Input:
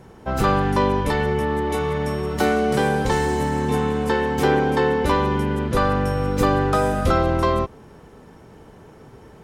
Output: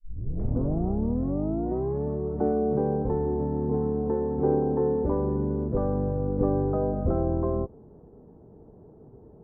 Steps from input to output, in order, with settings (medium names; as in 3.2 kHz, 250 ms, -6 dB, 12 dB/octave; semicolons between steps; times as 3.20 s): tape start-up on the opening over 2.05 s; four-pole ladder low-pass 760 Hz, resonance 20%; band-stop 540 Hz, Q 12